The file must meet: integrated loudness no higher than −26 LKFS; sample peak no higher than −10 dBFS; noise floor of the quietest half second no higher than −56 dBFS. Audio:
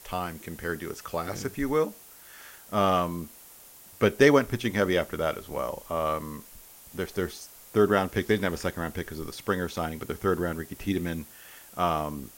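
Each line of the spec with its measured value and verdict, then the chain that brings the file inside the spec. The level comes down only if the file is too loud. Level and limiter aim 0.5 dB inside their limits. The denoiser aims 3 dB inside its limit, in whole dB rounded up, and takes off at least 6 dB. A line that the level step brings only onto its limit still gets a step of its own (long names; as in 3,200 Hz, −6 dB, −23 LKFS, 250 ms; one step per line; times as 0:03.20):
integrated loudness −28.0 LKFS: in spec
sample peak −6.0 dBFS: out of spec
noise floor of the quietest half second −50 dBFS: out of spec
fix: broadband denoise 9 dB, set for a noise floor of −50 dBFS
brickwall limiter −10.5 dBFS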